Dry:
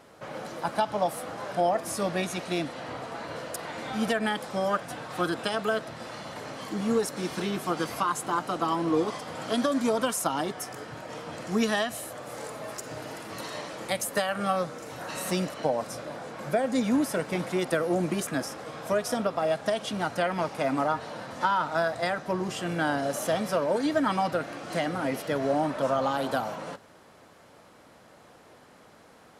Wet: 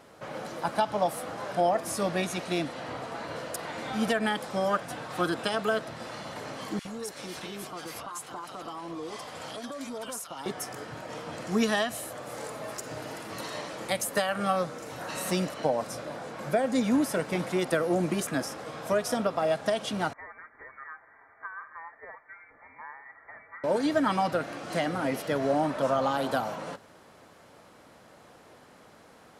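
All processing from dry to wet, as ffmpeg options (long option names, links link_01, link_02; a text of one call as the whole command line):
ffmpeg -i in.wav -filter_complex "[0:a]asettb=1/sr,asplit=3[link_01][link_02][link_03];[link_01]atrim=end=6.794[link_04];[link_02]atrim=start=6.79:end=10.46,asetpts=PTS-STARTPTS,afade=type=in:duration=0.004:curve=qsin,afade=type=out:start_time=3.666:duration=0.004:curve=qsin,equalizer=frequency=210:width=0.51:gain=-7.5,acompressor=threshold=-34dB:ratio=5:attack=3.2:release=140:knee=1:detection=peak,acrossover=split=1400[link_05][link_06];[link_05]adelay=60[link_07];[link_07][link_06]amix=inputs=2:normalize=0,atrim=end_sample=161847[link_08];[link_03]atrim=start=10.456[link_09];[link_04][link_08]acrossfade=duration=0.004:curve1=hsin:curve2=qsin[link_10];[link_10][link_09]acrossfade=duration=0.004:curve1=qsin:curve2=hsin,asettb=1/sr,asplit=3[link_11][link_12][link_13];[link_11]atrim=end=20.134[link_14];[link_12]atrim=start=20.13:end=23.64,asetpts=PTS-STARTPTS,afade=type=in:duration=0.004:curve=qsin,afade=type=out:start_time=3.506:duration=0.004:curve=qsin,aderivative,aecho=1:1:5.4:0.36,atrim=end_sample=154791,lowpass=frequency=2100:width_type=q:width=0.5098,lowpass=frequency=2100:width_type=q:width=0.6013,lowpass=frequency=2100:width_type=q:width=0.9,lowpass=frequency=2100:width_type=q:width=2.563,afreqshift=-2500[link_15];[link_13]atrim=start=23.636[link_16];[link_14][link_15]acrossfade=duration=0.004:curve1=hsin:curve2=qsin[link_17];[link_17][link_16]acrossfade=duration=0.004:curve1=qsin:curve2=hsin" out.wav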